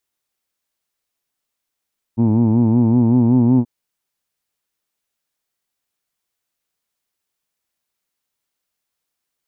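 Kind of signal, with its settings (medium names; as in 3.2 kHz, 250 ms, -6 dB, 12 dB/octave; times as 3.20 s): formant vowel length 1.48 s, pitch 111 Hz, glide +2 st, F1 260 Hz, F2 900 Hz, F3 2.4 kHz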